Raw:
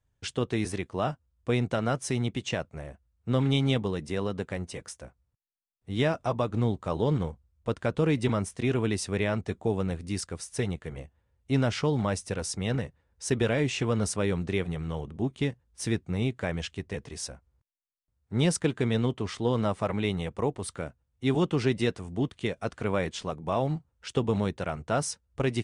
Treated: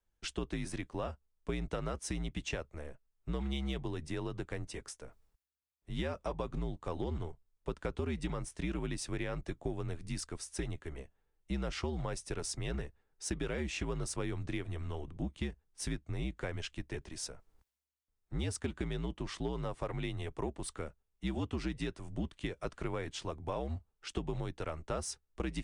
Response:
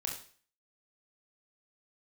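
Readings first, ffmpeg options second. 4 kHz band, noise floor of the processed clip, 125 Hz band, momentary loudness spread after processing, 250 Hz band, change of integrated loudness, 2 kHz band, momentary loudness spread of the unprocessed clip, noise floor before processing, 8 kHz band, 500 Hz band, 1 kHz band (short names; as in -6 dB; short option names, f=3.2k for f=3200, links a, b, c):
-8.5 dB, -82 dBFS, -10.5 dB, 7 LU, -10.5 dB, -10.0 dB, -9.0 dB, 10 LU, -76 dBFS, -6.5 dB, -11.0 dB, -10.0 dB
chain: -af "areverse,acompressor=mode=upward:threshold=-48dB:ratio=2.5,areverse,aeval=exprs='0.237*(cos(1*acos(clip(val(0)/0.237,-1,1)))-cos(1*PI/2))+0.00531*(cos(6*acos(clip(val(0)/0.237,-1,1)))-cos(6*PI/2))+0.00596*(cos(8*acos(clip(val(0)/0.237,-1,1)))-cos(8*PI/2))':c=same,acompressor=threshold=-28dB:ratio=6,afreqshift=-70,volume=-4.5dB"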